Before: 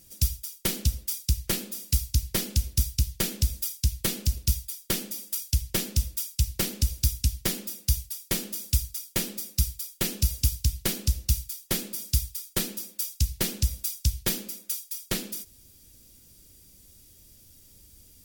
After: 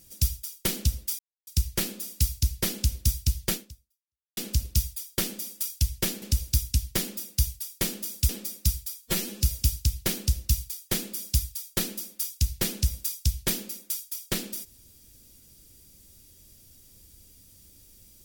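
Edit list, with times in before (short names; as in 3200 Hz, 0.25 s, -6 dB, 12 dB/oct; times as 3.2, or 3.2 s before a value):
1.19 insert silence 0.28 s
3.25–4.09 fade out exponential
5.94–6.72 cut
8.79–9.22 cut
9.95–10.22 stretch 1.5×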